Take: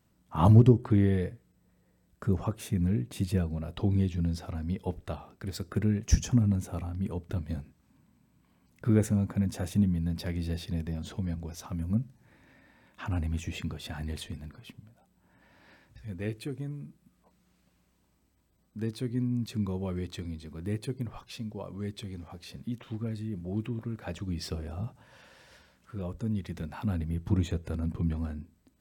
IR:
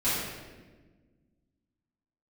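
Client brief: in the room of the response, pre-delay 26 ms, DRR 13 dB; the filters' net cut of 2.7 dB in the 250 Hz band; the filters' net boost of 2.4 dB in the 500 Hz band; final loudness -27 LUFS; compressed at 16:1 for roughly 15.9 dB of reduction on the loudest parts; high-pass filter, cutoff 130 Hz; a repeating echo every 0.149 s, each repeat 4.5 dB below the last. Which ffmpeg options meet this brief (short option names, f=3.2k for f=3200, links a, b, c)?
-filter_complex "[0:a]highpass=130,equalizer=f=250:t=o:g=-4,equalizer=f=500:t=o:g=5,acompressor=threshold=-31dB:ratio=16,aecho=1:1:149|298|447|596|745|894|1043|1192|1341:0.596|0.357|0.214|0.129|0.0772|0.0463|0.0278|0.0167|0.01,asplit=2[a][b];[1:a]atrim=start_sample=2205,adelay=26[c];[b][c]afir=irnorm=-1:irlink=0,volume=-24.5dB[d];[a][d]amix=inputs=2:normalize=0,volume=10dB"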